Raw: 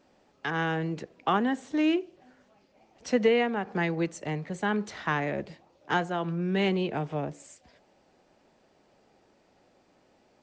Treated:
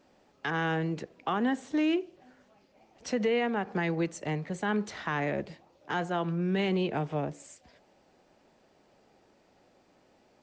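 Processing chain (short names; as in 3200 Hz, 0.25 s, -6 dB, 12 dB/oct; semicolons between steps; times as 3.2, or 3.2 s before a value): limiter -20 dBFS, peak gain reduction 6.5 dB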